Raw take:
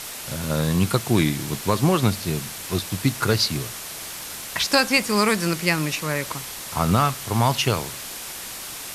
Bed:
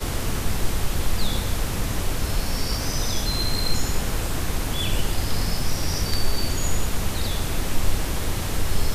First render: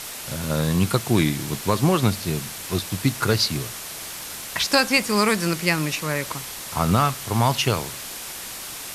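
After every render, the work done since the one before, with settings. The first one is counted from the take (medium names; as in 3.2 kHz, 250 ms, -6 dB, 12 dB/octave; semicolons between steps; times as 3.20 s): no audible change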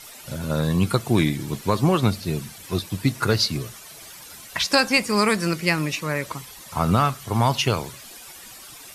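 noise reduction 12 dB, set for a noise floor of -35 dBFS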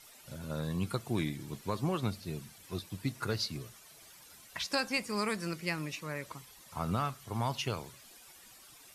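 trim -13.5 dB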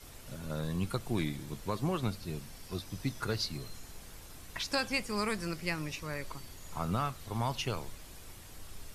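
add bed -26 dB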